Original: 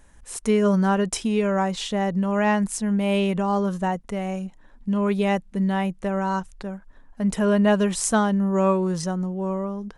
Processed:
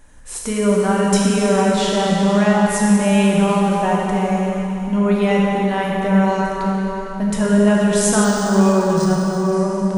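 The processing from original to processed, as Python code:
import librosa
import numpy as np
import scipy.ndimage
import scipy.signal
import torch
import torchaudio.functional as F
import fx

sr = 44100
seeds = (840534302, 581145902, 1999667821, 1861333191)

p1 = fx.over_compress(x, sr, threshold_db=-23.0, ratio=-1.0)
p2 = x + F.gain(torch.from_numpy(p1), -1.5).numpy()
p3 = fx.rev_plate(p2, sr, seeds[0], rt60_s=3.8, hf_ratio=0.9, predelay_ms=0, drr_db=-4.0)
p4 = fx.resample_linear(p3, sr, factor=3, at=(8.24, 9.53))
y = F.gain(torch.from_numpy(p4), -3.0).numpy()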